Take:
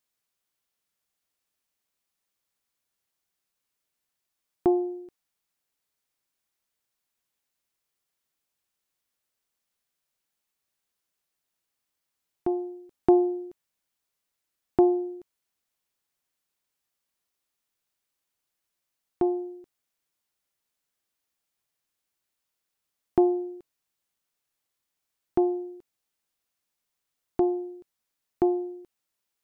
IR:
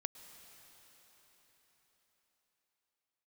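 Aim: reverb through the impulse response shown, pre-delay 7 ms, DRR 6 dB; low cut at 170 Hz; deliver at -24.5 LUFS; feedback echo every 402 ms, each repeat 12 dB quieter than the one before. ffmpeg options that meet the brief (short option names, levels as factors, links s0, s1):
-filter_complex "[0:a]highpass=170,aecho=1:1:402|804|1206:0.251|0.0628|0.0157,asplit=2[s0][s1];[1:a]atrim=start_sample=2205,adelay=7[s2];[s1][s2]afir=irnorm=-1:irlink=0,volume=0.631[s3];[s0][s3]amix=inputs=2:normalize=0,volume=2.51"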